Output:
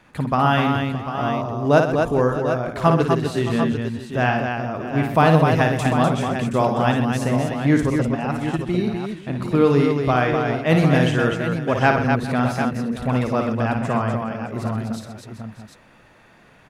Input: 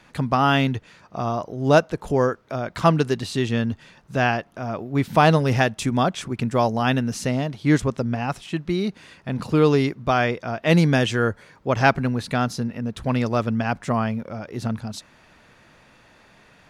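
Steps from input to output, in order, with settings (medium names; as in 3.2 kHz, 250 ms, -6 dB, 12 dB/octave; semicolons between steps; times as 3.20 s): peaking EQ 5.1 kHz -6.5 dB 1.5 oct; multi-tap echo 56/126/249/414/619/746 ms -6/-12/-5/-18/-15.5/-9 dB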